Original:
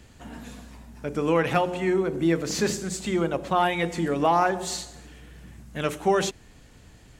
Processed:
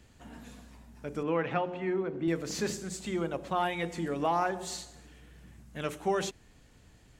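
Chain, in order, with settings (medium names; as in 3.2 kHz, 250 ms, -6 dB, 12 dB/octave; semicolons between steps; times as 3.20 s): 1.23–2.28 s: band-pass 110–2800 Hz; trim -7.5 dB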